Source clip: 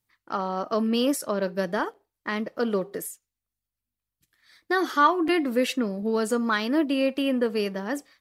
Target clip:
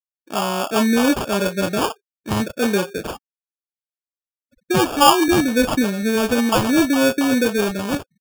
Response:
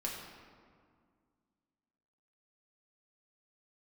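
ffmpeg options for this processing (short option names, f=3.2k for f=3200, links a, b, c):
-filter_complex "[0:a]afftfilt=real='re*gte(hypot(re,im),0.00891)':imag='im*gte(hypot(re,im),0.00891)':win_size=1024:overlap=0.75,acontrast=29,acrossover=split=590[a][b];[b]adelay=30[c];[a][c]amix=inputs=2:normalize=0,acrusher=samples=22:mix=1:aa=0.000001,volume=3dB"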